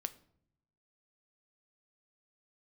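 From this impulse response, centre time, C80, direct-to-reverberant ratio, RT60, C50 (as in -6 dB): 3 ms, 21.0 dB, 11.5 dB, 0.70 s, 18.0 dB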